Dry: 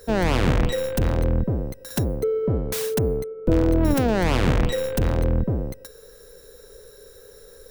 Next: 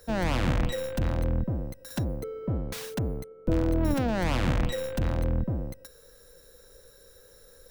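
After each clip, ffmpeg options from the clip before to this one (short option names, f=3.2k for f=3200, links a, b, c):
-filter_complex "[0:a]equalizer=f=420:w=7.9:g=-14.5,acrossover=split=670|5800[a][b][c];[c]alimiter=level_in=3.5dB:limit=-24dB:level=0:latency=1:release=224,volume=-3.5dB[d];[a][b][d]amix=inputs=3:normalize=0,volume=-5.5dB"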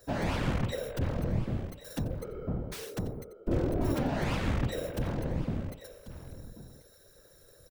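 -af "aecho=1:1:1089:0.178,afftfilt=real='hypot(re,im)*cos(2*PI*random(0))':imag='hypot(re,im)*sin(2*PI*random(1))':win_size=512:overlap=0.75,volume=2dB"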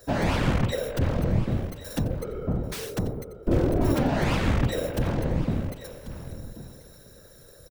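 -af "aecho=1:1:791|1582|2373:0.0891|0.0303|0.0103,volume=6.5dB"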